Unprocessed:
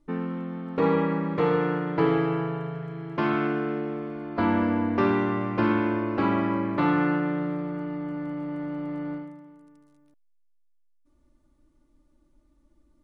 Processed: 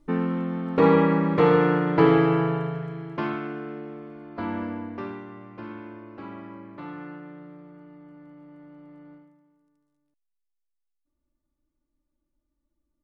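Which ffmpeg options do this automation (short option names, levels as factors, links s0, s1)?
-af "volume=1.78,afade=t=out:st=2.51:d=0.9:silence=0.251189,afade=t=out:st=4.63:d=0.6:silence=0.375837"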